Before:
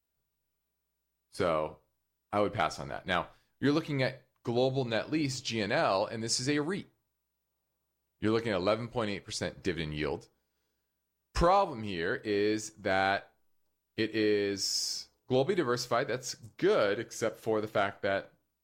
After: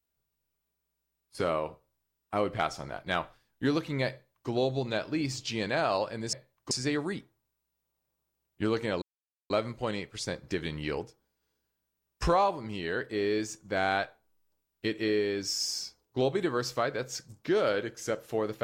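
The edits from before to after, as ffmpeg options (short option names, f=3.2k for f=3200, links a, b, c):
-filter_complex "[0:a]asplit=4[a][b][c][d];[a]atrim=end=6.332[e];[b]atrim=start=4.108:end=4.492[f];[c]atrim=start=6.328:end=8.64,asetpts=PTS-STARTPTS,afade=t=out:st=2.308:d=0.004:c=hsin,apad=pad_dur=0.48[g];[d]atrim=start=8.64,asetpts=PTS-STARTPTS,afade=t=in:d=0.004:c=hsin[h];[e][f]acrossfade=d=0.004:c1=hsin:c2=hsin[i];[g][h]concat=n=2:v=0:a=1[j];[i][j]acrossfade=d=0.004:c1=hsin:c2=hsin"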